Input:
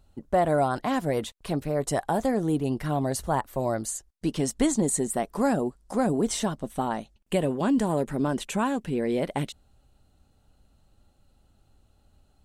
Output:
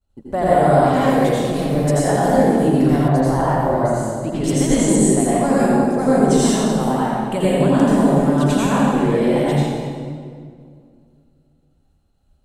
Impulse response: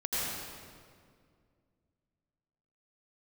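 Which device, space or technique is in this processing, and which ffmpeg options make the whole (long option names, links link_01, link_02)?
stairwell: -filter_complex "[0:a]agate=range=-33dB:threshold=-50dB:ratio=3:detection=peak[link_01];[1:a]atrim=start_sample=2205[link_02];[link_01][link_02]afir=irnorm=-1:irlink=0,asettb=1/sr,asplit=3[link_03][link_04][link_05];[link_03]atrim=end=3.084[link_06];[link_04]atrim=start=3.08:end=4.44,asetpts=PTS-STARTPTS,afade=type=in:duration=0.004:curve=qsin,afade=type=out:start_time=1.356:duration=0.004:curve=qsin,bass=frequency=250:gain=-1,treble=frequency=4000:gain=-12[link_07];[link_05]atrim=start=4.436[link_08];[link_06][link_07]acrossfade=duration=0.004:curve1=hsin:curve2=qsin[link_09];[link_09][link_08]acrossfade=duration=0.004:curve1=qsin:curve2=hsin,asettb=1/sr,asplit=3[link_10][link_11][link_12];[link_10]atrim=end=4.964[link_13];[link_11]atrim=start=4.96:end=5.6,asetpts=PTS-STARTPTS,afade=type=in:duration=0.004:curve=qsin,afade=type=out:start_time=0.636:duration=0.004:curve=qsin,lowpass=10000[link_14];[link_12]atrim=start=5.596[link_15];[link_13][link_14]acrossfade=duration=0.004:curve1=hsin:curve2=qsin[link_16];[link_16][link_15]acrossfade=duration=0.004:curve1=qsin:curve2=hsin,volume=2dB"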